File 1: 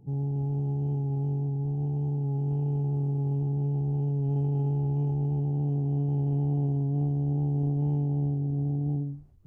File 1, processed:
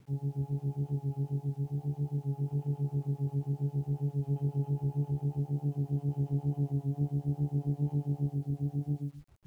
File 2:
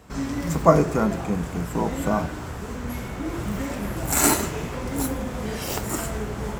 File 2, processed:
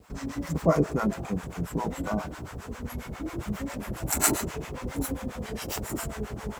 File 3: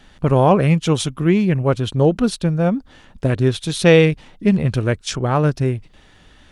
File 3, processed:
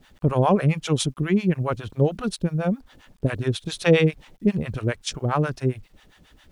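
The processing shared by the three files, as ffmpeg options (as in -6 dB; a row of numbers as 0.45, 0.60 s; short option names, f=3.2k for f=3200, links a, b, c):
-filter_complex "[0:a]acrossover=split=610[a][b];[a]aeval=exprs='val(0)*(1-1/2+1/2*cos(2*PI*7.4*n/s))':c=same[c];[b]aeval=exprs='val(0)*(1-1/2-1/2*cos(2*PI*7.4*n/s))':c=same[d];[c][d]amix=inputs=2:normalize=0,acrusher=bits=10:mix=0:aa=0.000001,volume=-1dB"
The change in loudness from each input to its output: -5.5, -5.5, -6.0 LU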